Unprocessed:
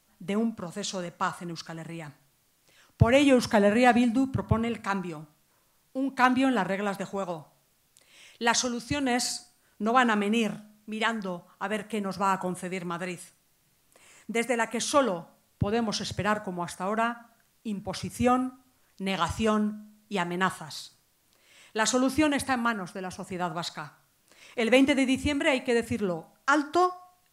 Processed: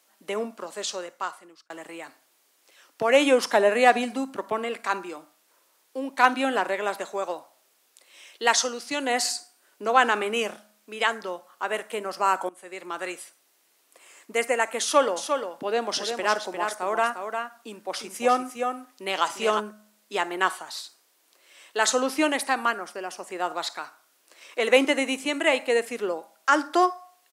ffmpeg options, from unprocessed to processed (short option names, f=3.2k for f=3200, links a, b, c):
-filter_complex "[0:a]asplit=3[a][b][c];[a]afade=t=out:st=15.16:d=0.02[d];[b]aecho=1:1:352:0.473,afade=t=in:st=15.16:d=0.02,afade=t=out:st=19.59:d=0.02[e];[c]afade=t=in:st=19.59:d=0.02[f];[d][e][f]amix=inputs=3:normalize=0,asplit=3[g][h][i];[g]atrim=end=1.7,asetpts=PTS-STARTPTS,afade=t=out:st=0.82:d=0.88[j];[h]atrim=start=1.7:end=12.49,asetpts=PTS-STARTPTS,afade=t=in:d=0.004:c=hsin,afade=t=out:st=10.786:d=0.004:c=hsin:silence=0.105925[k];[i]atrim=start=12.49,asetpts=PTS-STARTPTS,afade=t=in:d=0.58:silence=0.105925[l];[j][k][l]concat=n=3:v=0:a=1,highpass=f=330:w=0.5412,highpass=f=330:w=1.3066,volume=3.5dB"